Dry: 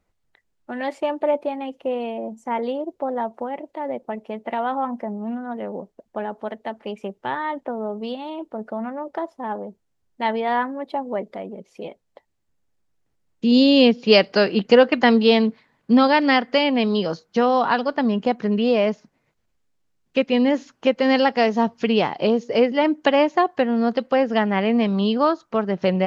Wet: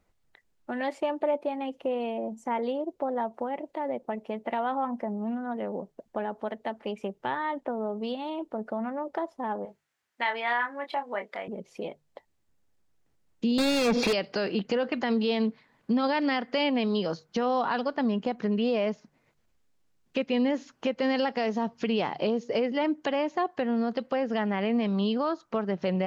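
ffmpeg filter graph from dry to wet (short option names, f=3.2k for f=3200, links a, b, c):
-filter_complex "[0:a]asettb=1/sr,asplit=3[a][b][c];[a]atrim=end=9.654[d];[b]atrim=start=9.65:end=11.48,asetpts=PTS-STARTPTS,afade=t=in:d=0.004:c=qsin,afade=t=out:st=1.826:d=0.004:c=qsin,highpass=f=1k:p=1,equalizer=f=1.8k:t=o:w=1.5:g=9.5,asplit=2[e][f];[f]adelay=25,volume=-6.5dB[g];[e][g]amix=inputs=2:normalize=0,atrim=end_sample=80703[h];[c]atrim=start=11.476[i];[d][h]acrossfade=d=0.004:c1=hsin:c2=qsin[j];[j][i]acrossfade=d=0.004:c1=qsin:c2=hsin,asettb=1/sr,asplit=3[k][l][m];[k]atrim=end=13.584[n];[l]atrim=start=13.58:end=14.13,asetpts=PTS-STARTPTS,afade=t=in:d=0.004:c=qsin,afade=t=out:st=0.546:d=0.004:c=qsin,acompressor=threshold=-23dB:ratio=8:attack=3.2:release=140:knee=1:detection=peak,asplit=2[o][p];[p]highpass=f=720:p=1,volume=38dB,asoftclip=type=tanh:threshold=-6.5dB[q];[o][q]amix=inputs=2:normalize=0,lowpass=f=3.1k:p=1,volume=-6dB,asuperstop=centerf=3000:order=8:qfactor=7.7[r];[m]atrim=start=14.126[s];[n][r]acrossfade=d=0.004:c1=hsin:c2=qsin[t];[t][s]acrossfade=d=0.004:c1=qsin:c2=hsin,bandreject=f=50:t=h:w=6,bandreject=f=100:t=h:w=6,bandreject=f=150:t=h:w=6,alimiter=limit=-12dB:level=0:latency=1:release=37,acompressor=threshold=-37dB:ratio=1.5,volume=1dB"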